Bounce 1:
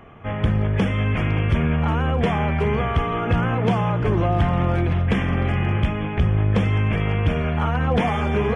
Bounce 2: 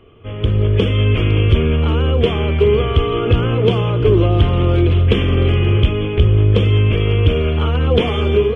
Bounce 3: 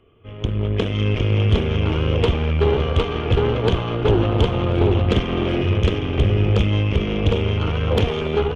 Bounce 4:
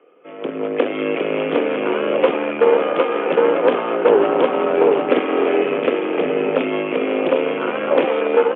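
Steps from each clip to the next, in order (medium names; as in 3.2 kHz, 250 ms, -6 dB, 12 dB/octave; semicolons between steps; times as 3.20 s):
FFT filter 110 Hz 0 dB, 170 Hz -10 dB, 420 Hz +5 dB, 790 Hz -14 dB, 1.2 kHz -6 dB, 1.8 kHz -13 dB, 3.1 kHz +5 dB, 5.7 kHz -10 dB; level rider
Chebyshev shaper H 3 -13 dB, 4 -20 dB, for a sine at -1 dBFS; delay 759 ms -3 dB; sine folder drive 4 dB, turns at 0 dBFS; trim -7.5 dB
mistuned SSB +57 Hz 230–2500 Hz; trim +6 dB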